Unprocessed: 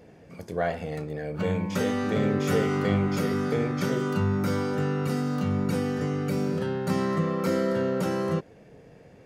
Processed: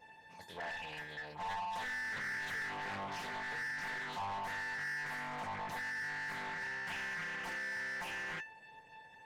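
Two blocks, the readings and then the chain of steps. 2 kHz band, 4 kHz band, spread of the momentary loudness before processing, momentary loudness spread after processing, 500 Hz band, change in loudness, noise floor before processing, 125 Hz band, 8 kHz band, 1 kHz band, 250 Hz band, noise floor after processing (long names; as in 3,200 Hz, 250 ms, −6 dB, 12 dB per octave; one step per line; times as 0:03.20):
+0.5 dB, −6.5 dB, 5 LU, 7 LU, −24.0 dB, −12.5 dB, −52 dBFS, −27.5 dB, −10.0 dB, −6.5 dB, −28.0 dB, −58 dBFS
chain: tuned comb filter 890 Hz, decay 0.27 s, mix 100%
mid-hump overdrive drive 25 dB, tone 2,600 Hz, clips at −38.5 dBFS
highs frequency-modulated by the lows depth 0.6 ms
level +5.5 dB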